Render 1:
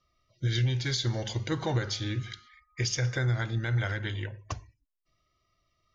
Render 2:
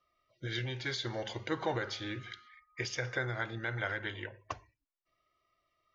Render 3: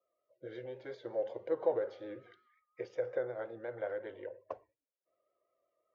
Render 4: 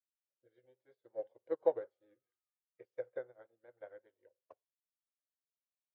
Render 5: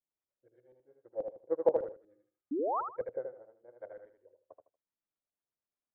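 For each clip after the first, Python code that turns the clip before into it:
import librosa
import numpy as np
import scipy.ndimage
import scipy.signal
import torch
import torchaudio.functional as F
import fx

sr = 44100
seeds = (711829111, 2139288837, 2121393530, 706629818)

y1 = fx.bass_treble(x, sr, bass_db=-14, treble_db=-13)
y2 = fx.rider(y1, sr, range_db=3, speed_s=2.0)
y2 = fx.vibrato(y2, sr, rate_hz=5.5, depth_cents=49.0)
y2 = fx.bandpass_q(y2, sr, hz=520.0, q=4.9)
y2 = F.gain(torch.from_numpy(y2), 8.0).numpy()
y3 = fx.upward_expand(y2, sr, threshold_db=-51.0, expansion=2.5)
y3 = F.gain(torch.from_numpy(y3), 2.0).numpy()
y4 = fx.filter_lfo_lowpass(y3, sr, shape='saw_up', hz=8.3, low_hz=380.0, high_hz=1800.0, q=0.9)
y4 = fx.spec_paint(y4, sr, seeds[0], shape='rise', start_s=2.51, length_s=0.3, low_hz=260.0, high_hz=1400.0, level_db=-36.0)
y4 = fx.echo_feedback(y4, sr, ms=78, feedback_pct=23, wet_db=-5.0)
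y4 = F.gain(torch.from_numpy(y4), 3.5).numpy()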